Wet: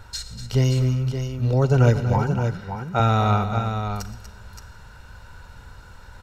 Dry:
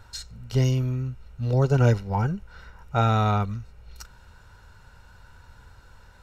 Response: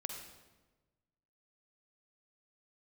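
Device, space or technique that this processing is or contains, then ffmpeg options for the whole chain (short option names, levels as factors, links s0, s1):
compressed reverb return: -filter_complex "[0:a]asplit=2[s0][s1];[1:a]atrim=start_sample=2205[s2];[s1][s2]afir=irnorm=-1:irlink=0,acompressor=threshold=0.0158:ratio=6,volume=0.794[s3];[s0][s3]amix=inputs=2:normalize=0,asettb=1/sr,asplit=3[s4][s5][s6];[s4]atrim=end=2.184[s7];[s5]atrim=start=2.18:end=3,asetpts=PTS-STARTPTS,afade=t=in:d=0.004:c=qsin,afade=t=out:st=0.816:d=0.004:c=qsin,highpass=140[s8];[s6]atrim=start=2.996[s9];[s7][s8]acrossfade=d=0.004:c1=hsin:c2=qsin[s10];[s10][s9]acrossfade=d=0.004:c1=qsin:c2=hsin,aecho=1:1:122|241|571:0.133|0.299|0.422,volume=1.19"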